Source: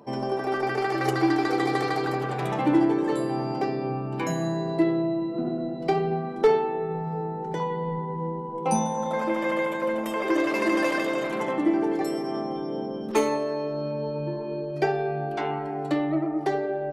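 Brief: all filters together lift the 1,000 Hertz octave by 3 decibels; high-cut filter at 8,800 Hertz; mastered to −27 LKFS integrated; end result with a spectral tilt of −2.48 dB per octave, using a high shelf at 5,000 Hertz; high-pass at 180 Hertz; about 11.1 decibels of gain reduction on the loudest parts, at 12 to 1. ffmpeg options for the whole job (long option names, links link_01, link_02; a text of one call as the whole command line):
ffmpeg -i in.wav -af "highpass=180,lowpass=8800,equalizer=frequency=1000:width_type=o:gain=4,highshelf=frequency=5000:gain=-4,acompressor=threshold=-25dB:ratio=12,volume=3dB" out.wav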